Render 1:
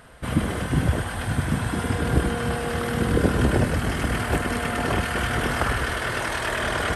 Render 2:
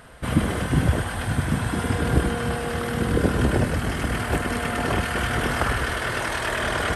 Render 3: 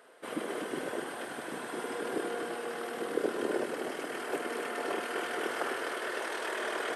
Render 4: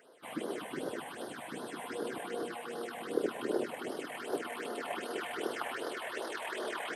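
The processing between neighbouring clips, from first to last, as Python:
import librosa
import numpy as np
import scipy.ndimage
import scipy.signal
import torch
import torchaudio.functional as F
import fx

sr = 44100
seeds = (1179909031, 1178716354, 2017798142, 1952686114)

y1 = fx.rider(x, sr, range_db=10, speed_s=2.0)
y2 = fx.ladder_highpass(y1, sr, hz=320.0, resonance_pct=45)
y2 = y2 + 10.0 ** (-6.5 / 20.0) * np.pad(y2, (int(252 * sr / 1000.0), 0))[:len(y2)]
y2 = y2 * 10.0 ** (-2.5 / 20.0)
y3 = fx.phaser_stages(y2, sr, stages=6, low_hz=340.0, high_hz=2400.0, hz=2.6, feedback_pct=20)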